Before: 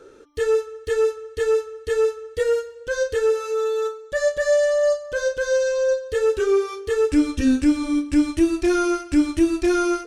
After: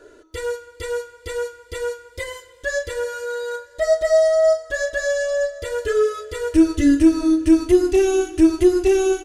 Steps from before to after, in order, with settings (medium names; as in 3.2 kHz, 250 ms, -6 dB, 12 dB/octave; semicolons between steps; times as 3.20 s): comb 3.2 ms, depth 84%; speed mistake 44.1 kHz file played as 48 kHz; reverberation RT60 5.0 s, pre-delay 25 ms, DRR 18 dB; trim -1 dB